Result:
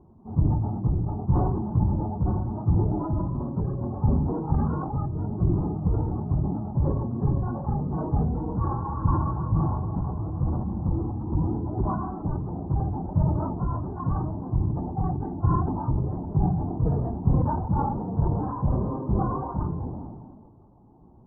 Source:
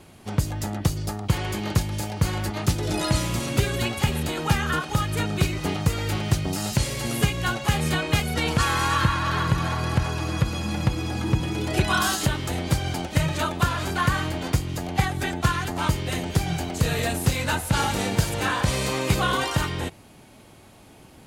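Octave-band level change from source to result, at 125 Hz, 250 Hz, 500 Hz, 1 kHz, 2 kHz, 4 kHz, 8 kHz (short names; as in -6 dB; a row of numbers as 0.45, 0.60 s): +0.5 dB, 0.0 dB, -4.5 dB, -5.0 dB, under -25 dB, under -40 dB, under -40 dB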